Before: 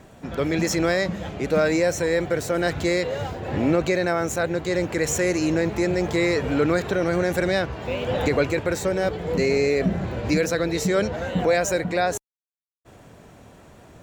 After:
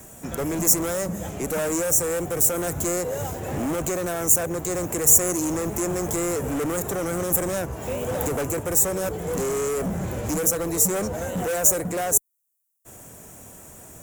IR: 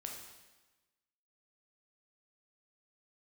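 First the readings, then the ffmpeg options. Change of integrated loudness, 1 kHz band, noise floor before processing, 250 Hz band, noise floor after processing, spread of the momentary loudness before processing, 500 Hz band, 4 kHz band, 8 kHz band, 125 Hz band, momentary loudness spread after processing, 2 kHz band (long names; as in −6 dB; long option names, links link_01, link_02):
+0.5 dB, −2.5 dB, −50 dBFS, −4.0 dB, −46 dBFS, 5 LU, −4.5 dB, −6.0 dB, +12.0 dB, −3.0 dB, 11 LU, −8.5 dB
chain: -filter_complex "[0:a]acrossover=split=260|1300|6900[link_01][link_02][link_03][link_04];[link_03]acompressor=threshold=-43dB:ratio=6[link_05];[link_01][link_02][link_05][link_04]amix=inputs=4:normalize=0,asoftclip=type=hard:threshold=-23.5dB,aexciter=amount=7.4:drive=7.4:freq=6300"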